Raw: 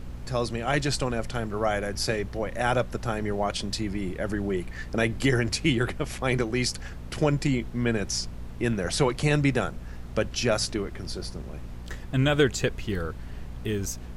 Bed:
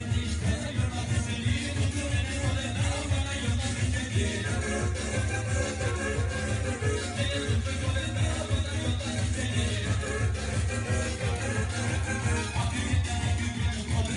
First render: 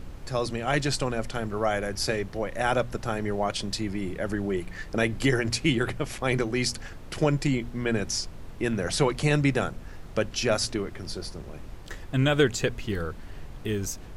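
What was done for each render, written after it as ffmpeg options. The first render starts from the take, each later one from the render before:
-af "bandreject=f=60:t=h:w=4,bandreject=f=120:t=h:w=4,bandreject=f=180:t=h:w=4,bandreject=f=240:t=h:w=4"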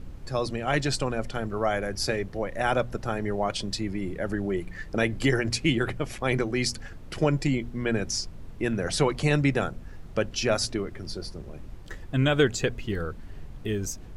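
-af "afftdn=nr=6:nf=-42"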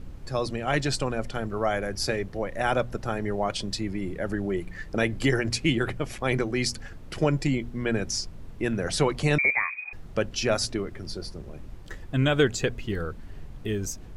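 -filter_complex "[0:a]asettb=1/sr,asplit=3[s0][s1][s2];[s0]atrim=end=9.384[s3];[s1]atrim=start=9.38:end=9.93,asetpts=PTS-STARTPTS,afade=t=in:d=0.004:c=qsin,afade=t=out:st=0.546:d=0.004:c=qsin,lowpass=f=2100:t=q:w=0.5098,lowpass=f=2100:t=q:w=0.6013,lowpass=f=2100:t=q:w=0.9,lowpass=f=2100:t=q:w=2.563,afreqshift=-2500[s4];[s2]atrim=start=9.926[s5];[s3][s4]acrossfade=d=0.004:c1=hsin:c2=qsin[s6];[s6][s5]acrossfade=d=0.004:c1=qsin:c2=hsin"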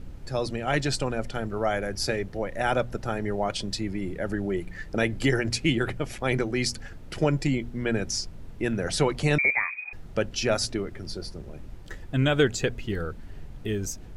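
-af "bandreject=f=1100:w=13"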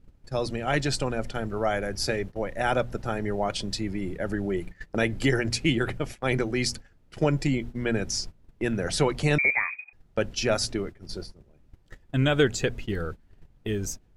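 -af "agate=range=0.126:threshold=0.02:ratio=16:detection=peak"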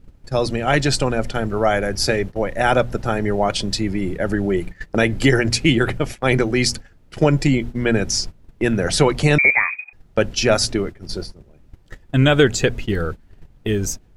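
-af "volume=2.66,alimiter=limit=0.708:level=0:latency=1"

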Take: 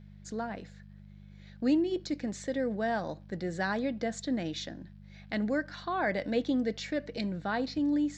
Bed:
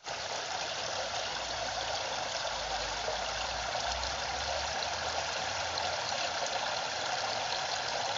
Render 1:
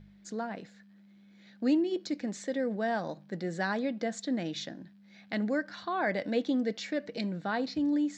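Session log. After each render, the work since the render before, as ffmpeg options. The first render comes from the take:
-af "bandreject=f=50:t=h:w=4,bandreject=f=100:t=h:w=4,bandreject=f=150:t=h:w=4"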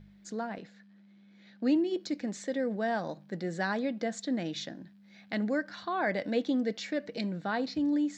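-filter_complex "[0:a]asettb=1/sr,asplit=3[s0][s1][s2];[s0]atrim=end=0.584[s3];[s1]atrim=start=0.58:end=1.76,asetpts=PTS-STARTPTS,afade=t=in:d=0.004:c=qsin,afade=t=out:st=1.176:d=0.004:c=qsin,highpass=110,lowpass=5900[s4];[s2]atrim=start=1.756[s5];[s3][s4]acrossfade=d=0.004:c1=hsin:c2=qsin[s6];[s6][s5]acrossfade=d=0.004:c1=qsin:c2=hsin"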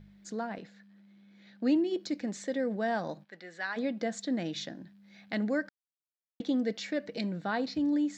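-filter_complex "[0:a]asplit=3[s0][s1][s2];[s0]afade=t=out:st=3.23:d=0.02[s3];[s1]bandpass=f=2200:t=q:w=0.88,afade=t=in:st=3.23:d=0.02,afade=t=out:st=3.76:d=0.02[s4];[s2]afade=t=in:st=3.76:d=0.02[s5];[s3][s4][s5]amix=inputs=3:normalize=0,asplit=3[s6][s7][s8];[s6]atrim=end=5.69,asetpts=PTS-STARTPTS,afade=t=out:st=5.686:d=0.004:c=hsin[s9];[s7]atrim=start=5.69:end=6.4,asetpts=PTS-STARTPTS,volume=0[s10];[s8]atrim=start=6.4,asetpts=PTS-STARTPTS,afade=t=in:d=0.004:c=hsin[s11];[s9][s10][s11]concat=n=3:v=0:a=1"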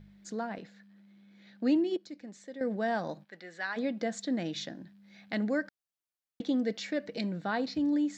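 -filter_complex "[0:a]asplit=3[s0][s1][s2];[s0]atrim=end=1.972[s3];[s1]atrim=start=1.968:end=2.612,asetpts=PTS-STARTPTS,volume=0.282[s4];[s2]atrim=start=2.608[s5];[s3][s4]acrossfade=d=0.004:c1=hsin:c2=hsin[s6];[s6][s5]acrossfade=d=0.004:c1=hsin:c2=hsin"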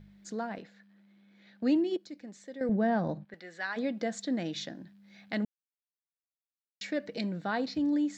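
-filter_complex "[0:a]asettb=1/sr,asplit=3[s0][s1][s2];[s0]atrim=end=0.624[s3];[s1]atrim=start=0.62:end=1.63,asetpts=PTS-STARTPTS,afade=t=in:d=0.004:c=qsin,afade=t=out:st=1.006:d=0.004:c=qsin,bass=f=250:g=-5,treble=f=4000:g=-4[s4];[s2]atrim=start=1.626[s5];[s3][s4]acrossfade=d=0.004:c1=hsin:c2=qsin[s6];[s6][s5]acrossfade=d=0.004:c1=qsin:c2=hsin,asettb=1/sr,asplit=3[s7][s8][s9];[s7]atrim=end=2.694[s10];[s8]atrim=start=2.69:end=3.34,asetpts=PTS-STARTPTS,afade=t=in:d=0.004:c=qsin,afade=t=out:st=0.646:d=0.004:c=qsin,aemphasis=mode=reproduction:type=riaa[s11];[s9]atrim=start=3.336[s12];[s10][s11]acrossfade=d=0.004:c1=hsin:c2=qsin[s13];[s13][s12]acrossfade=d=0.004:c1=qsin:c2=hsin,asplit=3[s14][s15][s16];[s14]atrim=end=5.45,asetpts=PTS-STARTPTS,afade=t=out:st=5.446:d=0.004:c=hsin[s17];[s15]atrim=start=5.45:end=6.81,asetpts=PTS-STARTPTS,volume=0[s18];[s16]atrim=start=6.81,asetpts=PTS-STARTPTS,afade=t=in:d=0.004:c=hsin[s19];[s17][s18][s19]concat=n=3:v=0:a=1"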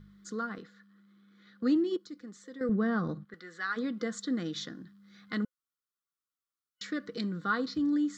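-af "superequalizer=8b=0.251:9b=0.355:10b=2.82:12b=0.398"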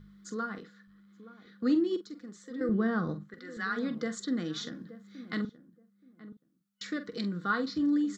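-filter_complex "[0:a]asplit=2[s0][s1];[s1]adelay=45,volume=0.266[s2];[s0][s2]amix=inputs=2:normalize=0,asplit=2[s3][s4];[s4]adelay=875,lowpass=f=810:p=1,volume=0.188,asplit=2[s5][s6];[s6]adelay=875,lowpass=f=810:p=1,volume=0.2[s7];[s3][s5][s7]amix=inputs=3:normalize=0"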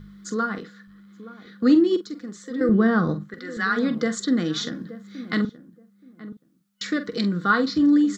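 -af "volume=3.16"

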